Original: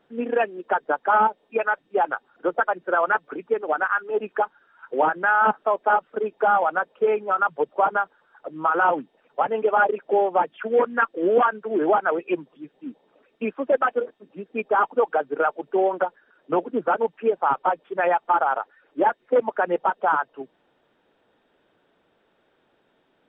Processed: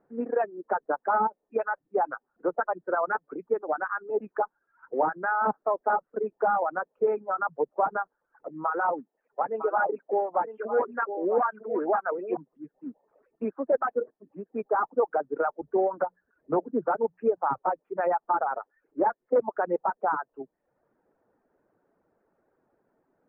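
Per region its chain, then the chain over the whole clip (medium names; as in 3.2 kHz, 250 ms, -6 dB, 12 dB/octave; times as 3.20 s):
8.64–12.37 s: bass shelf 220 Hz -11 dB + delay 956 ms -9 dB
15.61–17.58 s: peaking EQ 64 Hz +14 dB 1.5 oct + hum notches 60/120/180 Hz
whole clip: Bessel low-pass 1.1 kHz, order 8; reverb removal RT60 0.56 s; trim -3 dB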